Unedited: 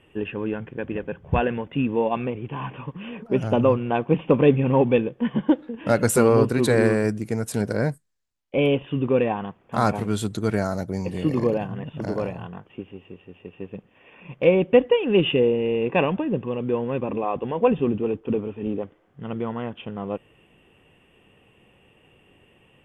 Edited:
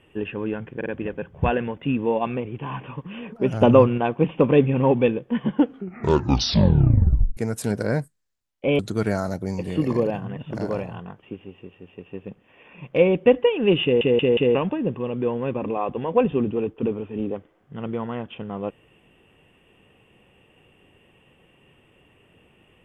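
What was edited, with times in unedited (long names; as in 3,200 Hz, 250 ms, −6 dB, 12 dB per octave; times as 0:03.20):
0:00.76: stutter 0.05 s, 3 plays
0:03.51–0:03.88: clip gain +5 dB
0:05.42: tape stop 1.85 s
0:08.69–0:10.26: remove
0:15.30: stutter in place 0.18 s, 4 plays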